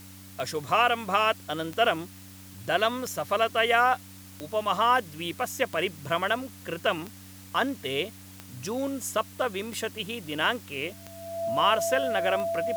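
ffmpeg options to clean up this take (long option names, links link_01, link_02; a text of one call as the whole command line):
ffmpeg -i in.wav -af "adeclick=threshold=4,bandreject=frequency=95.3:width_type=h:width=4,bandreject=frequency=190.6:width_type=h:width=4,bandreject=frequency=285.9:width_type=h:width=4,bandreject=frequency=670:width=30,afwtdn=0.0032" out.wav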